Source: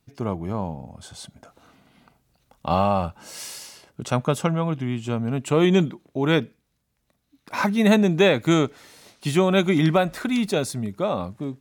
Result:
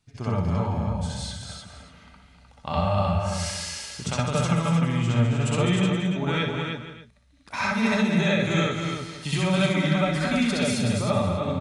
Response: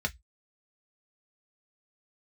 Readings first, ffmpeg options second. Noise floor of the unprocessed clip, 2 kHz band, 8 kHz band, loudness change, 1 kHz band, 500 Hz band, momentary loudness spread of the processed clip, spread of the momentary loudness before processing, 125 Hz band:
-72 dBFS, +0.5 dB, +2.5 dB, -2.0 dB, -2.0 dB, -5.0 dB, 10 LU, 18 LU, +2.0 dB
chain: -filter_complex "[0:a]equalizer=f=360:t=o:w=2.4:g=-8,acompressor=threshold=-28dB:ratio=6,aecho=1:1:59|205|307|473|585:0.447|0.447|0.562|0.178|0.106,asplit=2[a][b];[1:a]atrim=start_sample=2205,asetrate=40131,aresample=44100,adelay=64[c];[b][c]afir=irnorm=-1:irlink=0,volume=-2dB[d];[a][d]amix=inputs=2:normalize=0,aresample=22050,aresample=44100"

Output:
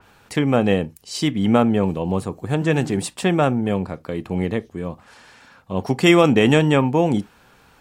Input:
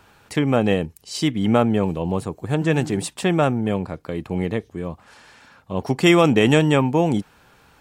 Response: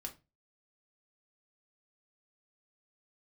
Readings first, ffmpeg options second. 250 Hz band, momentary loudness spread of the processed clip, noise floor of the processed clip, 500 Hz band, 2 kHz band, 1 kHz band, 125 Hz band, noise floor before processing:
+1.0 dB, 14 LU, -54 dBFS, +1.0 dB, +1.0 dB, +1.0 dB, +0.5 dB, -55 dBFS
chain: -filter_complex "[0:a]asplit=2[a][b];[1:a]atrim=start_sample=2205,afade=t=out:st=0.14:d=0.01,atrim=end_sample=6615[c];[b][c]afir=irnorm=-1:irlink=0,volume=-8dB[d];[a][d]amix=inputs=2:normalize=0,adynamicequalizer=threshold=0.0251:dfrequency=3800:dqfactor=0.7:tfrequency=3800:tqfactor=0.7:attack=5:release=100:ratio=0.375:range=2:mode=cutabove:tftype=highshelf,volume=-1dB"

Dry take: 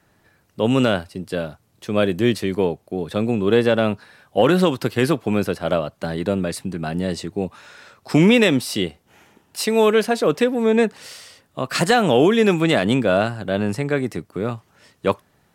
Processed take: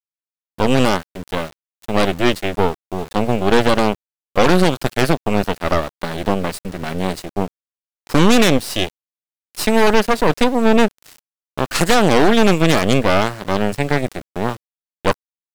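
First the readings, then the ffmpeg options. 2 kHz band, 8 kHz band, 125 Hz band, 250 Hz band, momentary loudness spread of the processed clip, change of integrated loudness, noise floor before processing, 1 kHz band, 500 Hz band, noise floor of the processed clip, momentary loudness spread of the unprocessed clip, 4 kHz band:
+3.5 dB, +5.5 dB, +2.0 dB, +1.5 dB, 13 LU, +2.0 dB, -62 dBFS, +6.0 dB, +1.0 dB, under -85 dBFS, 13 LU, +4.0 dB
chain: -af "aeval=exprs='val(0)*gte(abs(val(0)),0.0266)':c=same,aeval=exprs='0.631*(cos(1*acos(clip(val(0)/0.631,-1,1)))-cos(1*PI/2))+0.2*(cos(6*acos(clip(val(0)/0.631,-1,1)))-cos(6*PI/2))':c=same"

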